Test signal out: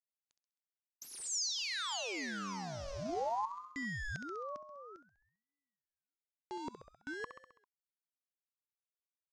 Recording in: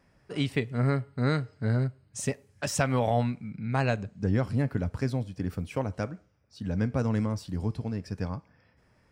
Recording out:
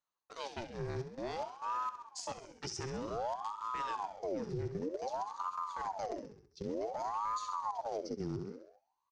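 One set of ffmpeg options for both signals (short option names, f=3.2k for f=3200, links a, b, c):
-filter_complex "[0:a]asplit=2[a][b];[b]aeval=exprs='val(0)*gte(abs(val(0)),0.0282)':c=same,volume=-4.5dB[c];[a][c]amix=inputs=2:normalize=0,agate=range=-27dB:threshold=-51dB:ratio=16:detection=peak,areverse,acompressor=threshold=-34dB:ratio=12,areverse,asubboost=boost=8:cutoff=110,lowpass=f=5.6k:t=q:w=5.2,aecho=1:1:66|132|198|264|330|396:0.299|0.164|0.0903|0.0497|0.0273|0.015,alimiter=level_in=3dB:limit=-24dB:level=0:latency=1:release=138,volume=-3dB,aeval=exprs='val(0)*sin(2*PI*690*n/s+690*0.65/0.54*sin(2*PI*0.54*n/s))':c=same,volume=-1dB"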